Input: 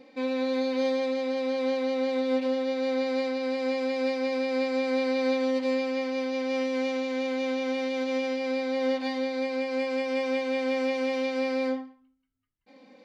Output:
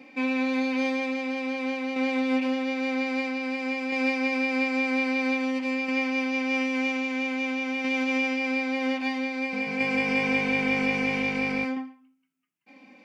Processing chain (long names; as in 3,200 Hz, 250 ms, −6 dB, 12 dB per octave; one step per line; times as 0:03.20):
thirty-one-band graphic EQ 500 Hz −11 dB, 2,500 Hz +10 dB, 4,000 Hz −9 dB
shaped tremolo saw down 0.51 Hz, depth 40%
elliptic high-pass filter 150 Hz
0:09.39–0:11.65: echo with shifted repeats 137 ms, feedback 52%, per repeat −50 Hz, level −7.5 dB
level +5.5 dB